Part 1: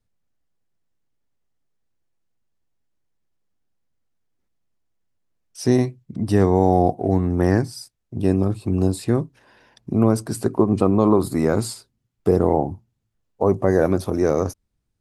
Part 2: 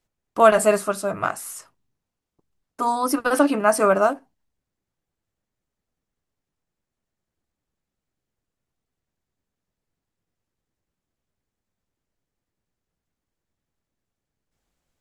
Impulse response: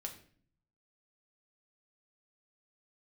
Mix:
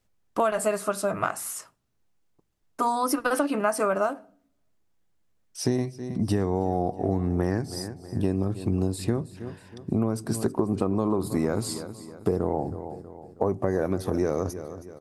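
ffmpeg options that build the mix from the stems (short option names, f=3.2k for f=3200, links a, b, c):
-filter_complex "[0:a]volume=-0.5dB,asplit=3[a][b][c];[b]volume=-18dB[d];[c]volume=-18dB[e];[1:a]volume=0.5dB,asplit=2[f][g];[g]volume=-16dB[h];[2:a]atrim=start_sample=2205[i];[d][h]amix=inputs=2:normalize=0[j];[j][i]afir=irnorm=-1:irlink=0[k];[e]aecho=0:1:320|640|960|1280|1600|1920:1|0.43|0.185|0.0795|0.0342|0.0147[l];[a][f][k][l]amix=inputs=4:normalize=0,acompressor=threshold=-21dB:ratio=6"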